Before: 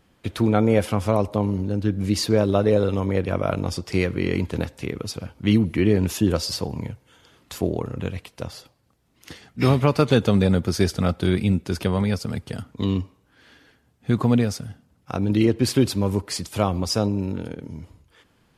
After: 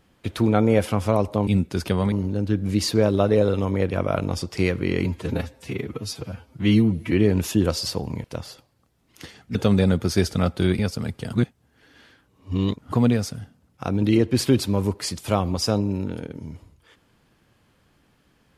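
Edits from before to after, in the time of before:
4.4–5.78 stretch 1.5×
6.9–8.31 cut
9.62–10.18 cut
11.42–12.07 move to 1.47
12.61–14.2 reverse

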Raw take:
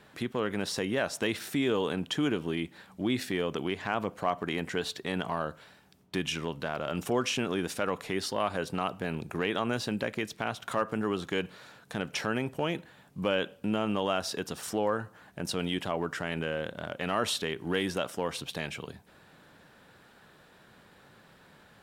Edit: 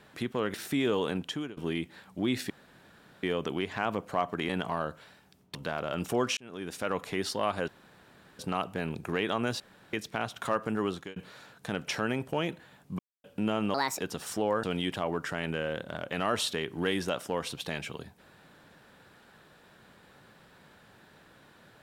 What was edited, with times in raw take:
0.54–1.36 cut
1.98–2.39 fade out, to -23.5 dB
3.32 insert room tone 0.73 s
4.58–5.09 cut
6.15–6.52 cut
7.34–7.93 fade in
8.65 insert room tone 0.71 s
9.86–10.19 room tone
11.16–11.42 fade out
13.25–13.5 mute
14–14.35 speed 143%
15–15.52 cut

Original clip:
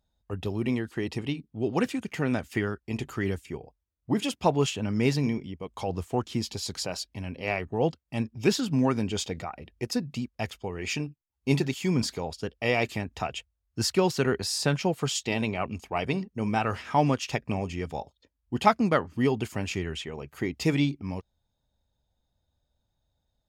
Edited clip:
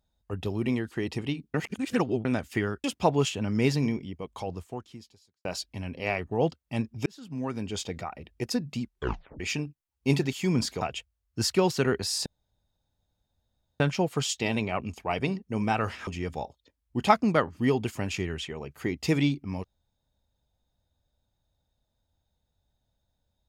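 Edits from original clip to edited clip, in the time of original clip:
1.54–2.25 reverse
2.84–4.25 cut
5.65–6.86 fade out quadratic
8.47–9.48 fade in
10.22 tape stop 0.59 s
12.22–13.21 cut
14.66 insert room tone 1.54 s
16.93–17.64 cut

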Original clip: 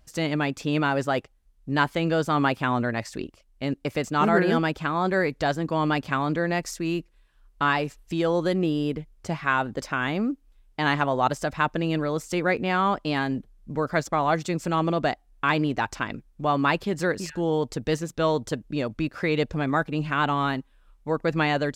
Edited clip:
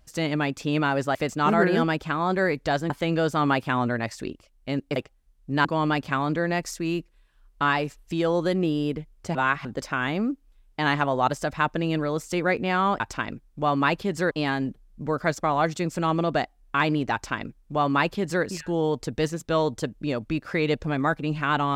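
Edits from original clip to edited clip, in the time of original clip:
1.15–1.84 swap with 3.9–5.65
9.35–9.65 reverse
15.82–17.13 copy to 13

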